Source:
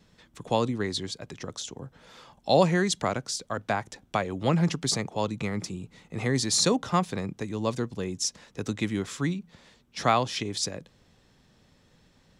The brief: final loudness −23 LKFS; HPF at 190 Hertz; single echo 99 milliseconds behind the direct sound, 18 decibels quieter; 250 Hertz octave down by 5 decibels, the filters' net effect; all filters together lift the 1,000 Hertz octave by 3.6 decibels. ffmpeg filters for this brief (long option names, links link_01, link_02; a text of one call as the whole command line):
ffmpeg -i in.wav -af "highpass=190,equalizer=frequency=250:width_type=o:gain=-4.5,equalizer=frequency=1000:width_type=o:gain=5,aecho=1:1:99:0.126,volume=5dB" out.wav